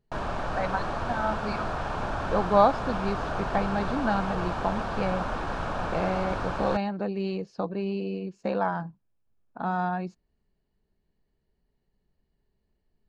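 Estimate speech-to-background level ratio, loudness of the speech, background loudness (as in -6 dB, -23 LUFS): 2.0 dB, -30.0 LUFS, -32.0 LUFS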